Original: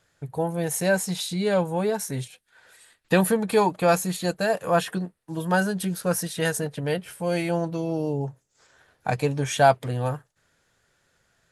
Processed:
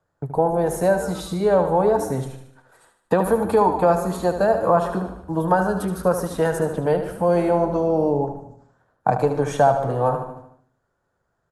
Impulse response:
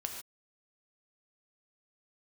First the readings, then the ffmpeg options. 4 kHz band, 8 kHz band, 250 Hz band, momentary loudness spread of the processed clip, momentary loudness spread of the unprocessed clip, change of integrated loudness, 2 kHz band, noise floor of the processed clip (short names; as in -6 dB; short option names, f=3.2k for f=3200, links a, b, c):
-7.5 dB, -6.0 dB, +2.5 dB, 9 LU, 11 LU, +4.0 dB, -3.0 dB, -73 dBFS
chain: -filter_complex "[0:a]asplit=2[a][b];[b]asplit=3[c][d][e];[c]adelay=121,afreqshift=-130,volume=-17.5dB[f];[d]adelay=242,afreqshift=-260,volume=-26.4dB[g];[e]adelay=363,afreqshift=-390,volume=-35.2dB[h];[f][g][h]amix=inputs=3:normalize=0[i];[a][i]amix=inputs=2:normalize=0,agate=range=-13dB:threshold=-53dB:ratio=16:detection=peak,acrossover=split=85|360[j][k][l];[j]acompressor=threshold=-53dB:ratio=4[m];[k]acompressor=threshold=-37dB:ratio=4[n];[l]acompressor=threshold=-26dB:ratio=4[o];[m][n][o]amix=inputs=3:normalize=0,highshelf=f=1.6k:t=q:w=1.5:g=-13.5,asplit=2[p][q];[q]aecho=0:1:75|150|225|300|375|450:0.355|0.181|0.0923|0.0471|0.024|0.0122[r];[p][r]amix=inputs=2:normalize=0,volume=9dB"